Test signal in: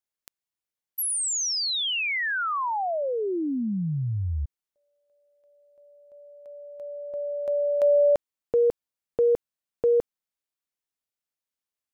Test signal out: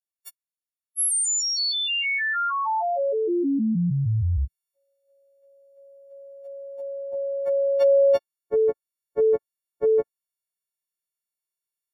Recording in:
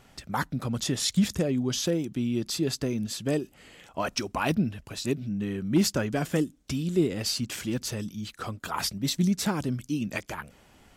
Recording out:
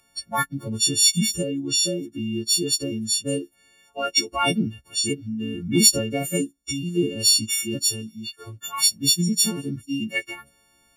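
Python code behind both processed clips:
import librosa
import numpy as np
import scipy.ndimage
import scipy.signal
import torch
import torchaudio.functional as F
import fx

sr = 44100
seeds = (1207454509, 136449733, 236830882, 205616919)

y = fx.freq_snap(x, sr, grid_st=4)
y = fx.noise_reduce_blind(y, sr, reduce_db=15)
y = fx.rider(y, sr, range_db=5, speed_s=2.0)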